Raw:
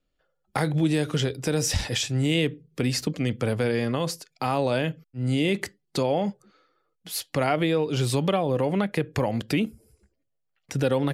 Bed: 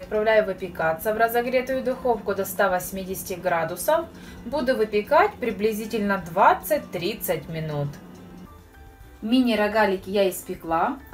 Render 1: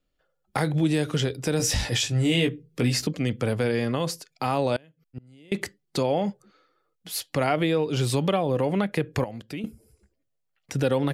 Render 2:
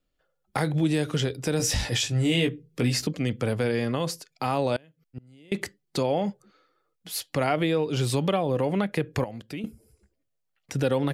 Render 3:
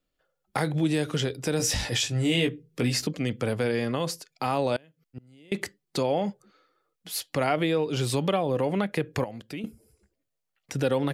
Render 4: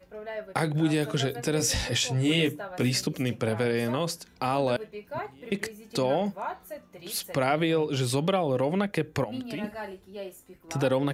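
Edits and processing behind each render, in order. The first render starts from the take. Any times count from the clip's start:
1.58–3.07 doubler 17 ms -4 dB; 4.76–5.52 flipped gate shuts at -25 dBFS, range -28 dB; 9.24–9.64 gain -10.5 dB
gain -1 dB
low shelf 130 Hz -5 dB
add bed -17.5 dB

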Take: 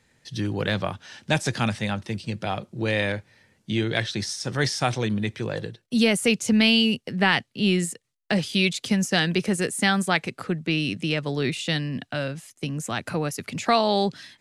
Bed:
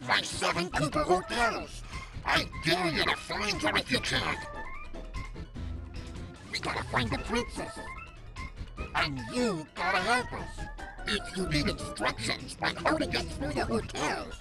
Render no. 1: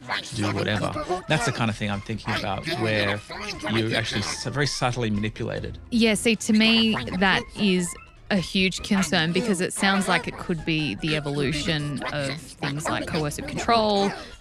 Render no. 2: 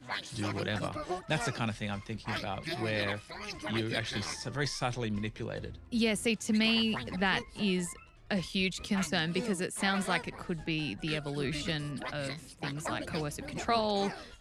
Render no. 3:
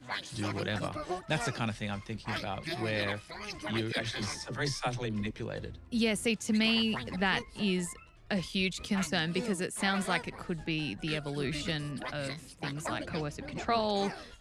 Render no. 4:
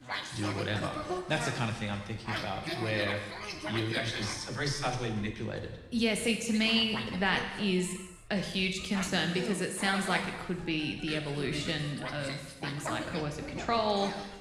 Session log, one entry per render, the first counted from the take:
add bed -1.5 dB
gain -9 dB
3.92–5.31 dispersion lows, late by 59 ms, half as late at 360 Hz; 13.03–13.8 air absorption 68 m
non-linear reverb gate 0.38 s falling, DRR 4 dB

